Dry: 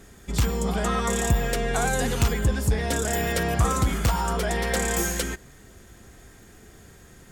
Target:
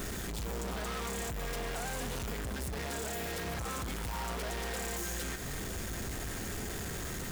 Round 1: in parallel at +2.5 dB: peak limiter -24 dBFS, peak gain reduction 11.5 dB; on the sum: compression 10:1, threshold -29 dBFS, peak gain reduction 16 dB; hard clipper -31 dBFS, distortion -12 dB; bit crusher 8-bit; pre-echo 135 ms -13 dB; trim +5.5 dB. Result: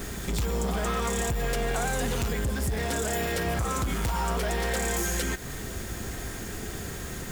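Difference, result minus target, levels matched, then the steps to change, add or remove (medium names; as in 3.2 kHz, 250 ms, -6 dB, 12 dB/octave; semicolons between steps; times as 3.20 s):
hard clipper: distortion -7 dB
change: hard clipper -39.5 dBFS, distortion -5 dB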